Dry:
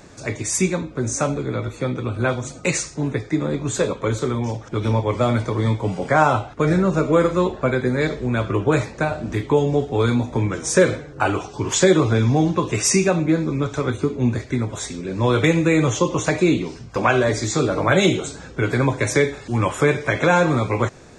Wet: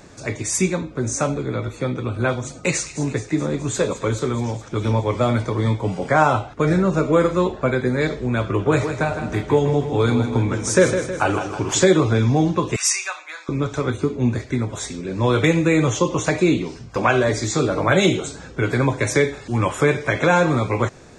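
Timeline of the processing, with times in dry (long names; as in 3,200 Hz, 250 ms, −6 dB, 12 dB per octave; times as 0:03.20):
0:02.48–0:05.20: delay with a high-pass on its return 212 ms, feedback 67%, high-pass 2,500 Hz, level −12.5 dB
0:08.43–0:11.86: repeating echo 159 ms, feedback 52%, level −8.5 dB
0:12.76–0:13.49: high-pass filter 1,000 Hz 24 dB per octave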